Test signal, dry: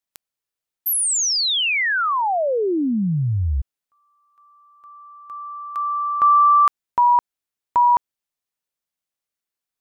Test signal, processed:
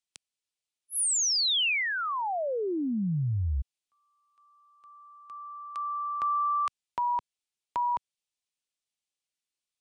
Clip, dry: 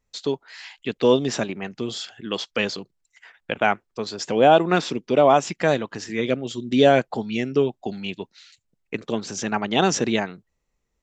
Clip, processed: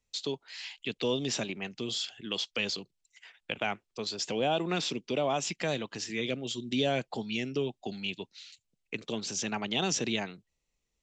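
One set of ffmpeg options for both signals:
-filter_complex "[0:a]highshelf=f=2.1k:t=q:w=1.5:g=6.5,aresample=22050,aresample=44100,acrossover=split=160[a][b];[b]acompressor=threshold=-22dB:ratio=2:attack=2.9:release=104:knee=2.83:detection=peak[c];[a][c]amix=inputs=2:normalize=0,volume=-7.5dB"

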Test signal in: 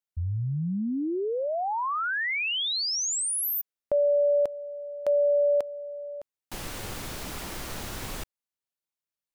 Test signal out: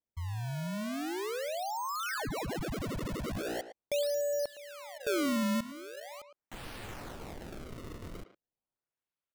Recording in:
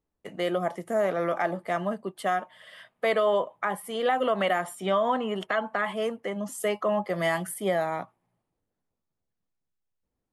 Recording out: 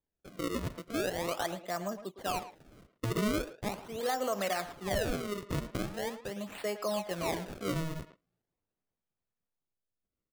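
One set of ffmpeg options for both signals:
-filter_complex "[0:a]acrusher=samples=31:mix=1:aa=0.000001:lfo=1:lforange=49.6:lforate=0.41,asplit=2[a][b];[b]adelay=110,highpass=300,lowpass=3.4k,asoftclip=type=hard:threshold=-25dB,volume=-10dB[c];[a][c]amix=inputs=2:normalize=0,volume=-7.5dB"

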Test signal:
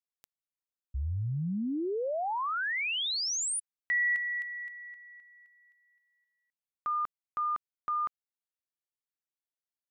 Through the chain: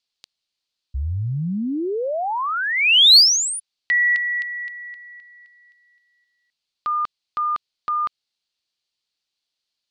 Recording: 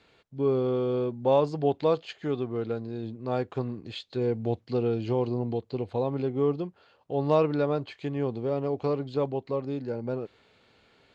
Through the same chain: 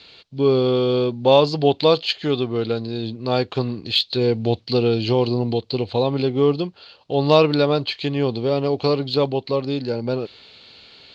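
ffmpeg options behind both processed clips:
-af "lowpass=f=4.4k:t=q:w=5.1,aexciter=amount=1.8:drive=5.4:freq=2.5k,volume=8dB"

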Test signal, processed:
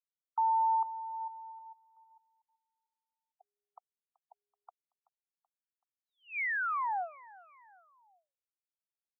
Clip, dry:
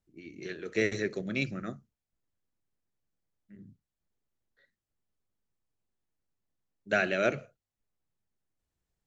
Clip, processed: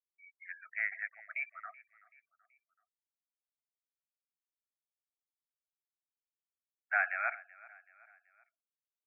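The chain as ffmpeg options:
-filter_complex "[0:a]afftfilt=real='re*gte(hypot(re,im),0.01)':imag='im*gte(hypot(re,im),0.01)':win_size=1024:overlap=0.75,asuperpass=centerf=1300:order=20:qfactor=0.79,asplit=2[a][b];[b]aecho=0:1:380|760|1140:0.0841|0.0404|0.0194[c];[a][c]amix=inputs=2:normalize=0"

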